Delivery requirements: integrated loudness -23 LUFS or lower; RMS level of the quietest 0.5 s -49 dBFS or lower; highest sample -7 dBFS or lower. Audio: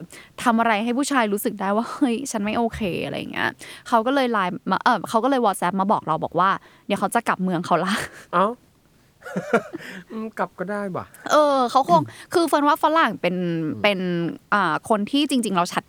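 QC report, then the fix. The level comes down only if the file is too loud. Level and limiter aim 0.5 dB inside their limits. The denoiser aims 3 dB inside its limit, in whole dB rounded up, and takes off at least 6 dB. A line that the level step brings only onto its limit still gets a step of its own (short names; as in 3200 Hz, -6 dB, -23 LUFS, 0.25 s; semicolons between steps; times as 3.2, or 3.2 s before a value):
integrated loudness -21.5 LUFS: fail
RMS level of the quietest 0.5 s -57 dBFS: OK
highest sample -4.5 dBFS: fail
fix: gain -2 dB; limiter -7.5 dBFS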